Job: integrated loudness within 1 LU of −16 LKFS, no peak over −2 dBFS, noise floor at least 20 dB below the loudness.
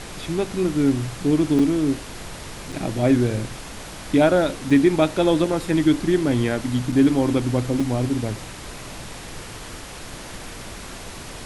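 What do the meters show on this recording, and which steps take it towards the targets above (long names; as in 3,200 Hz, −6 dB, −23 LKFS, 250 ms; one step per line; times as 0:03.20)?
number of dropouts 5; longest dropout 4.8 ms; background noise floor −37 dBFS; target noise floor −41 dBFS; integrated loudness −21.0 LKFS; sample peak −4.5 dBFS; target loudness −16.0 LKFS
→ repair the gap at 0:01.59/0:02.72/0:04.70/0:06.92/0:07.80, 4.8 ms
noise reduction from a noise print 6 dB
level +5 dB
brickwall limiter −2 dBFS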